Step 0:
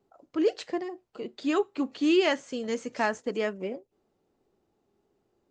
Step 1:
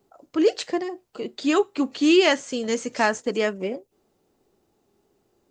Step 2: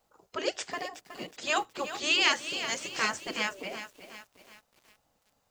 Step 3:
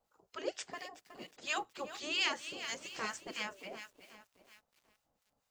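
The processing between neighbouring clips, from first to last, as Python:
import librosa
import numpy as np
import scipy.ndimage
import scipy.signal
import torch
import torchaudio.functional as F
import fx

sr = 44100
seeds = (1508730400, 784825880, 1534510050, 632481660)

y1 = fx.high_shelf(x, sr, hz=5000.0, db=9.0)
y1 = F.gain(torch.from_numpy(y1), 5.5).numpy()
y2 = fx.spec_gate(y1, sr, threshold_db=-10, keep='weak')
y2 = fx.echo_crushed(y2, sr, ms=369, feedback_pct=55, bits=8, wet_db=-11)
y3 = fx.harmonic_tremolo(y2, sr, hz=4.3, depth_pct=70, crossover_hz=1200.0)
y3 = F.gain(torch.from_numpy(y3), -5.5).numpy()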